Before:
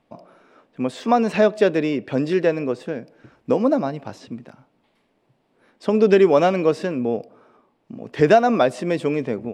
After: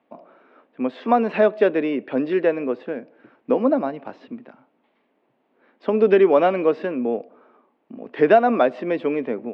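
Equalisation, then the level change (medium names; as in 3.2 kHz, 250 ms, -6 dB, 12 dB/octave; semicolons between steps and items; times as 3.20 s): low-pass 4.8 kHz 12 dB/octave; three-band isolator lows -24 dB, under 210 Hz, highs -24 dB, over 3.5 kHz; peaking EQ 250 Hz +3.5 dB 0.28 oct; 0.0 dB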